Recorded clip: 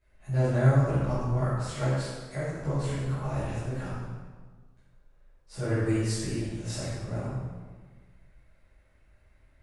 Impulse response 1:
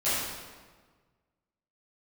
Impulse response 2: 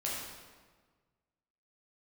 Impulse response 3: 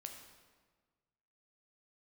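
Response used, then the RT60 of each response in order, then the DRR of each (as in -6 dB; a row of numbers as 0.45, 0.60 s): 1; 1.5, 1.5, 1.5 s; -14.5, -5.5, 3.5 dB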